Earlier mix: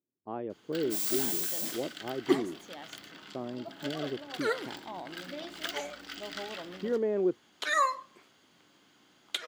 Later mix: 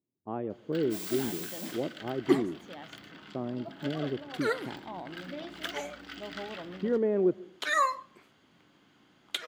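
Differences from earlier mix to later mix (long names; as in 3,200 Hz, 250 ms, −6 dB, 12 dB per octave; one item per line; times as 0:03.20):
speech: send on
second sound: add high-shelf EQ 5,400 Hz +11.5 dB
master: add bass and treble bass +6 dB, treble −9 dB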